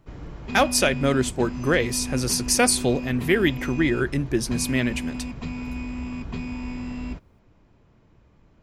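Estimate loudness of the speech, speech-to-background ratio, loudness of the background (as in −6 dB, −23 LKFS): −23.0 LKFS, 10.0 dB, −33.0 LKFS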